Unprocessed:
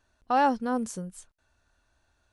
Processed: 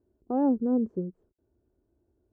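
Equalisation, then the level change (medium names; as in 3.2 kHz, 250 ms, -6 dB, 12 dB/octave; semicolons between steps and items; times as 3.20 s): high-pass 51 Hz; resonant low-pass 370 Hz, resonance Q 4.5; 0.0 dB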